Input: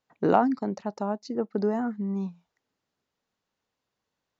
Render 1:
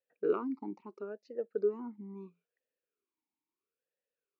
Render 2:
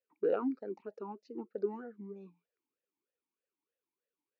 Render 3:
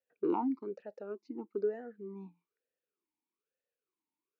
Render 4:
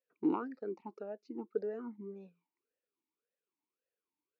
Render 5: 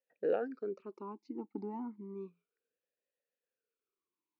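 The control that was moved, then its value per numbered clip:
formant filter swept between two vowels, speed: 0.75, 3.2, 1.1, 1.8, 0.32 Hertz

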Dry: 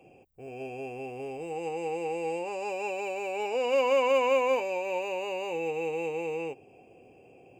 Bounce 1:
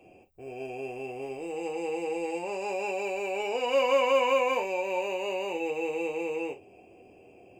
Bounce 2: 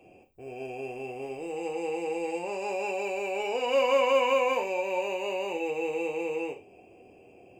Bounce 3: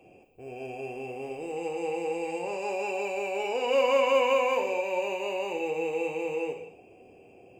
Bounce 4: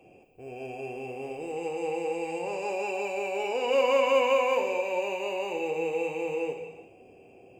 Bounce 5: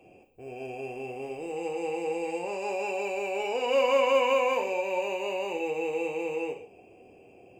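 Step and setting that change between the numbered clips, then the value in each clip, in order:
reverb whose tail is shaped and stops, gate: 80, 120, 280, 440, 190 milliseconds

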